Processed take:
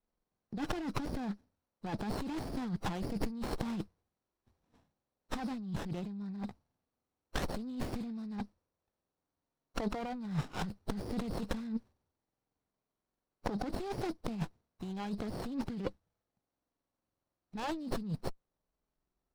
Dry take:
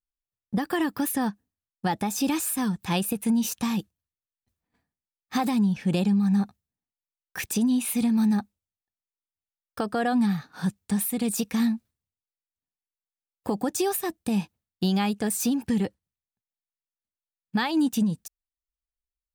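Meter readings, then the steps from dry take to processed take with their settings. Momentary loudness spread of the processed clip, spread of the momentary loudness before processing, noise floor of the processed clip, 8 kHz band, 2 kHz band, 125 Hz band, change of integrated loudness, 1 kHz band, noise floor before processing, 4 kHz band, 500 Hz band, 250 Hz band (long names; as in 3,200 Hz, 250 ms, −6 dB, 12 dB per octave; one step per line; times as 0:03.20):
6 LU, 8 LU, below −85 dBFS, −22.0 dB, −11.5 dB, −9.5 dB, −13.5 dB, −10.5 dB, below −85 dBFS, −12.0 dB, −9.0 dB, −14.0 dB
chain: hearing-aid frequency compression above 3,800 Hz 4 to 1
compressor whose output falls as the input rises −34 dBFS, ratio −1
windowed peak hold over 17 samples
level −2.5 dB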